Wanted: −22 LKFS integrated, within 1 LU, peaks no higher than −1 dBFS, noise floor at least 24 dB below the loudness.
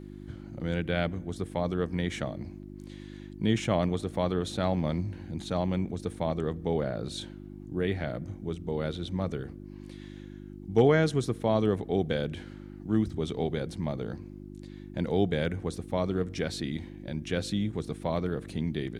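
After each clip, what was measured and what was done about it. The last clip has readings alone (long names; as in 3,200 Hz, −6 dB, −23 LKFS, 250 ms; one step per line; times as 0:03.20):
mains hum 50 Hz; hum harmonics up to 350 Hz; level of the hum −41 dBFS; integrated loudness −30.5 LKFS; sample peak −10.0 dBFS; target loudness −22.0 LKFS
→ hum removal 50 Hz, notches 7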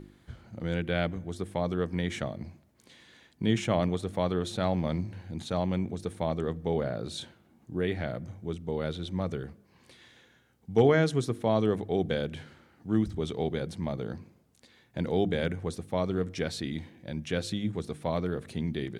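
mains hum none found; integrated loudness −31.0 LKFS; sample peak −10.5 dBFS; target loudness −22.0 LKFS
→ level +9 dB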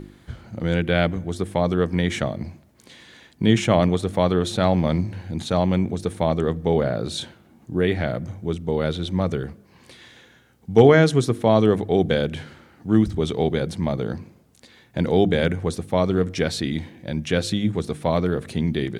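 integrated loudness −22.0 LKFS; sample peak −1.5 dBFS; background noise floor −55 dBFS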